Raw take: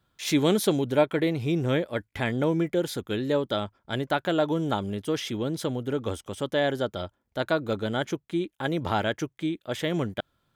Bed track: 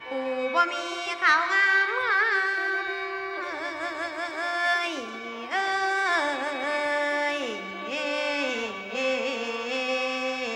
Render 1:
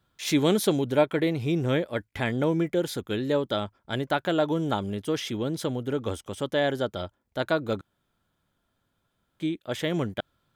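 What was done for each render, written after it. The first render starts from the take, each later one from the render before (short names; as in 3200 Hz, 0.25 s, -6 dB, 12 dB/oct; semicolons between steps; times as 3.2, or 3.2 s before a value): 7.81–9.4 room tone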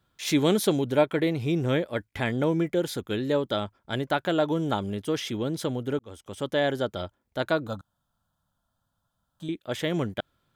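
5.99–6.48 fade in; 7.67–9.49 fixed phaser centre 920 Hz, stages 4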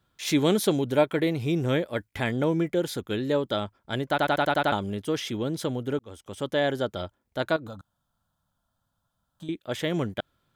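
0.9–2.31 high shelf 7700 Hz +4.5 dB; 4.09 stutter in place 0.09 s, 7 plays; 7.56–9.49 compressor, threshold -35 dBFS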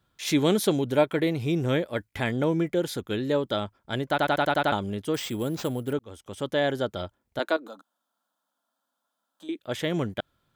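5.14–5.93 sample-rate reducer 11000 Hz; 7.39–9.59 steep high-pass 250 Hz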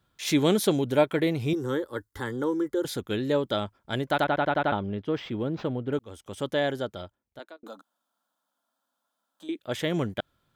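1.53–2.85 fixed phaser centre 660 Hz, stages 6; 4.24–5.93 air absorption 290 m; 6.44–7.63 fade out linear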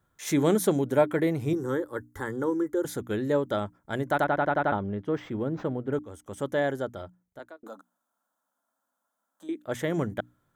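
band shelf 3500 Hz -9.5 dB 1.3 oct; notches 60/120/180/240/300 Hz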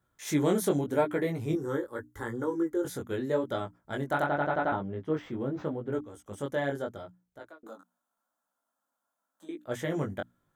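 chorus 0.83 Hz, delay 16.5 ms, depth 5.4 ms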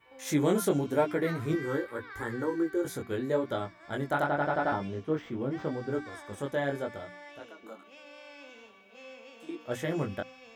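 add bed track -22 dB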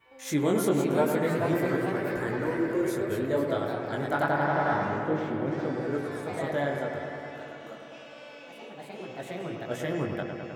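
echoes that change speed 0.544 s, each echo +2 st, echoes 3, each echo -6 dB; on a send: analogue delay 0.103 s, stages 2048, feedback 81%, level -7 dB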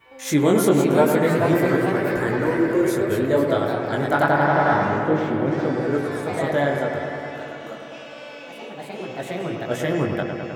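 gain +8 dB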